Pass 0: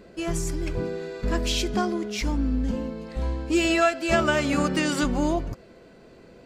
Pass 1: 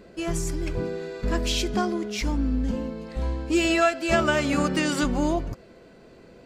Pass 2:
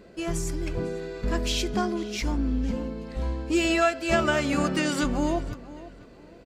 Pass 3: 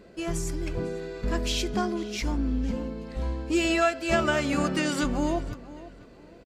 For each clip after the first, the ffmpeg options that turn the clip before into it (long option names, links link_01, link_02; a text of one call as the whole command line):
ffmpeg -i in.wav -af anull out.wav
ffmpeg -i in.wav -filter_complex "[0:a]asplit=2[link_01][link_02];[link_02]adelay=499,lowpass=frequency=4200:poles=1,volume=-17dB,asplit=2[link_03][link_04];[link_04]adelay=499,lowpass=frequency=4200:poles=1,volume=0.29,asplit=2[link_05][link_06];[link_06]adelay=499,lowpass=frequency=4200:poles=1,volume=0.29[link_07];[link_01][link_03][link_05][link_07]amix=inputs=4:normalize=0,volume=-1.5dB" out.wav
ffmpeg -i in.wav -af "aresample=32000,aresample=44100,volume=-1dB" out.wav